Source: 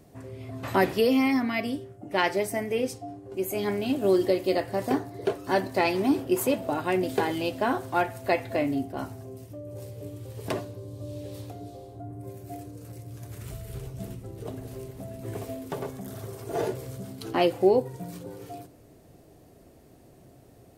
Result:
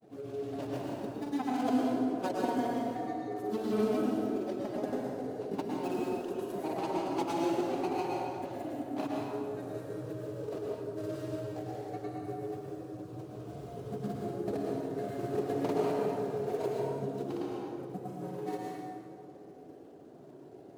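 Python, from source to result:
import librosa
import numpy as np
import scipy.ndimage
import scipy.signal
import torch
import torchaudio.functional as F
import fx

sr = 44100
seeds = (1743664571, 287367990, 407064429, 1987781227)

y = scipy.ndimage.median_filter(x, 41, mode='constant')
y = scipy.signal.sosfilt(scipy.signal.butter(2, 240.0, 'highpass', fs=sr, output='sos'), y)
y = fx.dereverb_blind(y, sr, rt60_s=0.94)
y = fx.peak_eq(y, sr, hz=1900.0, db=-8.0, octaves=0.73)
y = fx.over_compress(y, sr, threshold_db=-35.0, ratio=-0.5)
y = fx.pitch_keep_formants(y, sr, semitones=1.0)
y = fx.granulator(y, sr, seeds[0], grain_ms=100.0, per_s=20.0, spray_ms=100.0, spread_st=0)
y = fx.rev_plate(y, sr, seeds[1], rt60_s=2.3, hf_ratio=0.6, predelay_ms=95, drr_db=-3.5)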